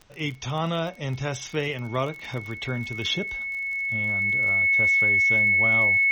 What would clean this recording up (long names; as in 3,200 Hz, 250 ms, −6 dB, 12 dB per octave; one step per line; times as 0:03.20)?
click removal
notch filter 2,200 Hz, Q 30
downward expander −30 dBFS, range −21 dB